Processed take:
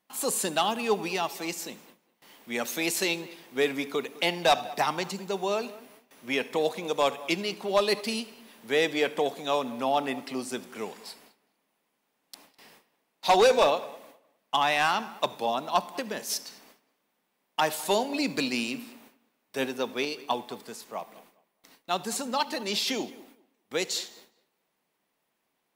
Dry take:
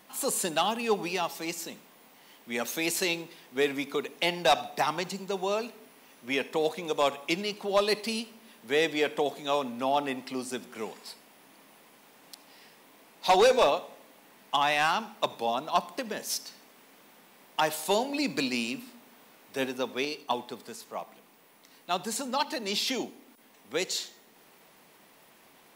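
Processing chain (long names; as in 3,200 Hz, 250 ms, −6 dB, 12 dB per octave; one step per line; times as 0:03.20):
noise gate with hold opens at −44 dBFS
on a send: tape delay 204 ms, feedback 21%, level −18 dB, low-pass 2,800 Hz
on the sum: level +1 dB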